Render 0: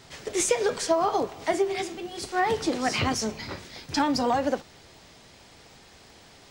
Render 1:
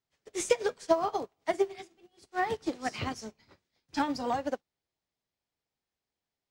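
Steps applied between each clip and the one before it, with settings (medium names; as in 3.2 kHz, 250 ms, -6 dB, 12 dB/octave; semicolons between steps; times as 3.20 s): upward expansion 2.5:1, over -45 dBFS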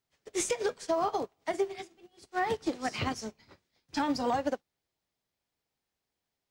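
peak limiter -22.5 dBFS, peak gain reduction 11 dB; trim +3 dB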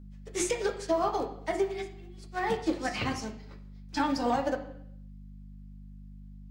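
hum 50 Hz, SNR 13 dB; on a send at -2 dB: reverberation RT60 0.70 s, pre-delay 3 ms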